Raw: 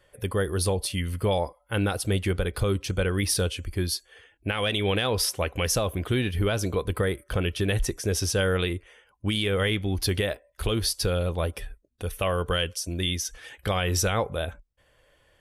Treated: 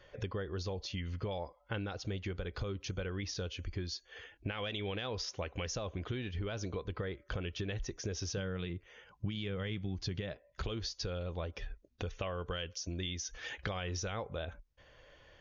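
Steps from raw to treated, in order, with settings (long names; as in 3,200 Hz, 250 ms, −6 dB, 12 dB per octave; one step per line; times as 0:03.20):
0:08.37–0:10.64: parametric band 150 Hz +12 dB 0.94 octaves
downward compressor 6 to 1, threshold −39 dBFS, peak gain reduction 20.5 dB
linear-phase brick-wall low-pass 6,900 Hz
level +2.5 dB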